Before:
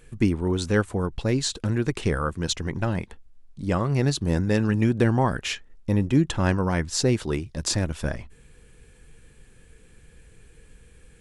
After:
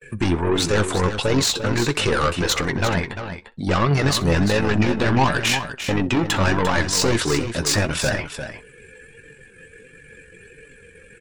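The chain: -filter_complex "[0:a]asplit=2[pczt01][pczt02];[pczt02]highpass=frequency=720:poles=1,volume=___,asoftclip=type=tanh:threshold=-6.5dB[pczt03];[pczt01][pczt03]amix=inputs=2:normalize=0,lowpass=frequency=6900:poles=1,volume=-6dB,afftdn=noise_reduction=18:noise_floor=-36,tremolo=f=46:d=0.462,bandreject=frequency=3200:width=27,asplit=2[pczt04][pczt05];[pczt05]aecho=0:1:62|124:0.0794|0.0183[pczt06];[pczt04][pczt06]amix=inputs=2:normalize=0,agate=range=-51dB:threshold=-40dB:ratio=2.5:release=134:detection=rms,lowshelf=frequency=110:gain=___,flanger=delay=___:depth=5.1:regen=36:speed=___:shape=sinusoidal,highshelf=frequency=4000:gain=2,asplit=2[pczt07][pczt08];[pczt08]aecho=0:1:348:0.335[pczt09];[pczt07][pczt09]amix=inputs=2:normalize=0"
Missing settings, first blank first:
31dB, 3, 6.7, 1.5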